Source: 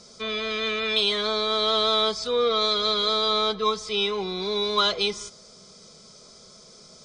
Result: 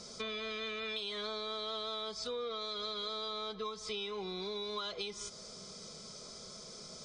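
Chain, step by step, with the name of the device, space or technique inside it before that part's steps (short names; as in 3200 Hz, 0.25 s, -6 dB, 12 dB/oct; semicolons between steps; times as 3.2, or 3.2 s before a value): serial compression, leveller first (compressor 2:1, threshold -28 dBFS, peak gain reduction 6.5 dB; compressor 4:1, threshold -39 dBFS, peak gain reduction 13.5 dB)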